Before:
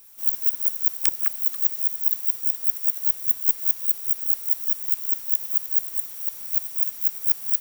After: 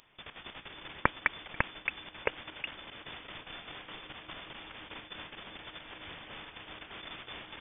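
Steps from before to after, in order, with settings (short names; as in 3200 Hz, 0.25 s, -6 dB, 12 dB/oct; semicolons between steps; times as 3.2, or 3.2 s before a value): level quantiser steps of 20 dB; echoes that change speed 0.197 s, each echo -5 st, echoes 2, each echo -6 dB; inverted band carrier 3500 Hz; gain +13 dB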